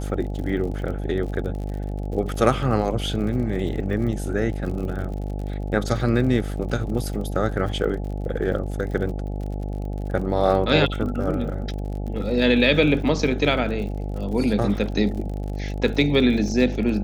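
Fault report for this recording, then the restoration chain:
buzz 50 Hz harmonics 17 -28 dBFS
crackle 49 per s -32 dBFS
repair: de-click; de-hum 50 Hz, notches 17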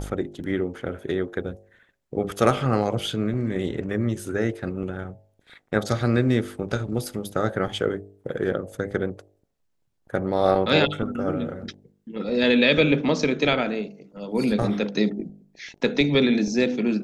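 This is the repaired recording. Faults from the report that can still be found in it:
nothing left

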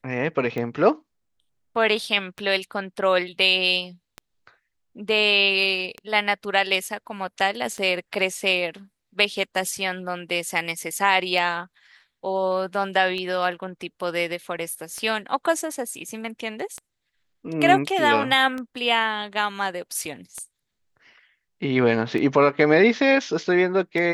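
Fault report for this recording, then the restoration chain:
tick 33 1/3 rpm -18 dBFS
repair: de-click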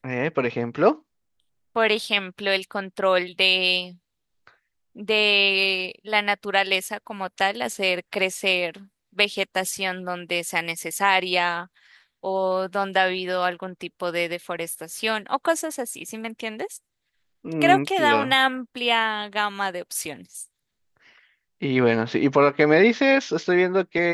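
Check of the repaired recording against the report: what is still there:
nothing left

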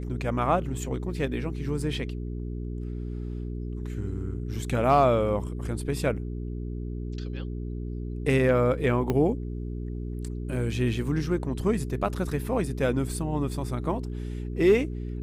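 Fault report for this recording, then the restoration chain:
hum 60 Hz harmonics 7 -33 dBFS
9.10 s: pop -14 dBFS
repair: de-click; de-hum 60 Hz, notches 7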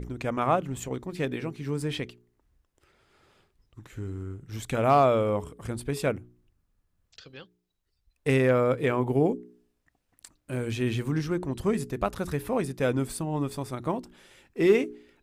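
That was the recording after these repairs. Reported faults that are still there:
9.10 s: pop

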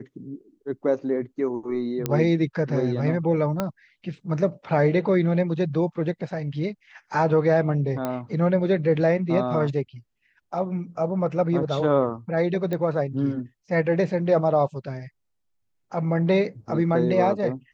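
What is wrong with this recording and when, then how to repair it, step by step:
2.06 s: pop -10 dBFS
3.60 s: pop -11 dBFS
8.05 s: pop -14 dBFS
12.73 s: pop -17 dBFS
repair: de-click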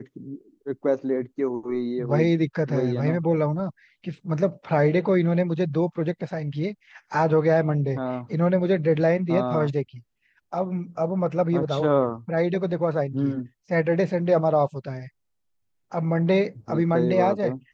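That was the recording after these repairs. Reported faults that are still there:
3.60 s: pop
12.73 s: pop

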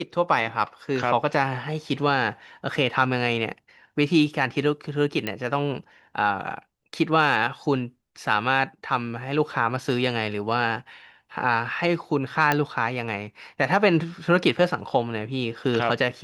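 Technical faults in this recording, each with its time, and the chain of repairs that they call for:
5.27 s: pop -13 dBFS
12.52 s: pop -7 dBFS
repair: de-click

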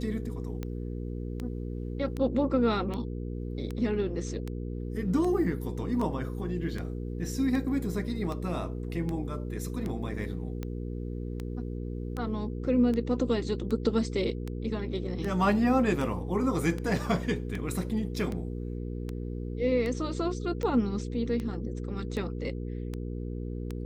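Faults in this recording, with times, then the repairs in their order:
hum 60 Hz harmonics 8 -35 dBFS
tick 78 rpm -22 dBFS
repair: de-click; de-hum 60 Hz, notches 8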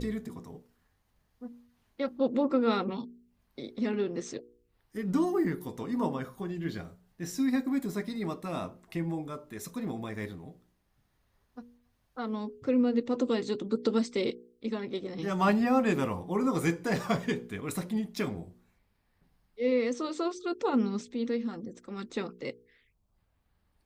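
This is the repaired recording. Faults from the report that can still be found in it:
nothing left

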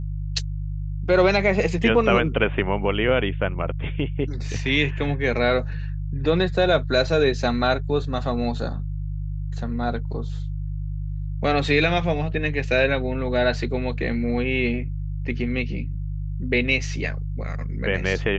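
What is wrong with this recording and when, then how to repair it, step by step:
hum 50 Hz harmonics 3 -28 dBFS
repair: de-hum 50 Hz, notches 3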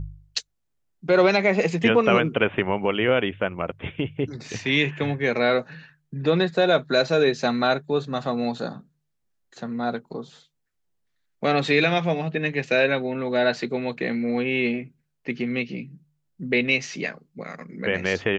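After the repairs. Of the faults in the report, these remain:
nothing left

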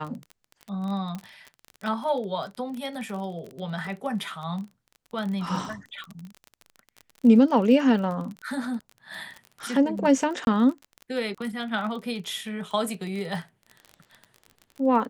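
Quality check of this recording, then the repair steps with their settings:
crackle 27 per s -32 dBFS
1.15 s: pop -22 dBFS
10.45–10.47 s: dropout 21 ms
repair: de-click; interpolate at 10.45 s, 21 ms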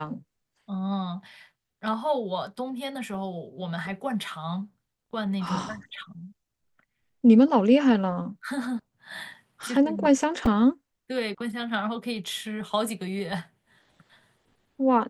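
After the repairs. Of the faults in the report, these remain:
nothing left

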